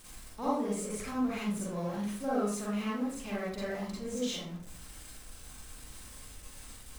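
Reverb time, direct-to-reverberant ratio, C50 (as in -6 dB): 0.55 s, -8.0 dB, -2.0 dB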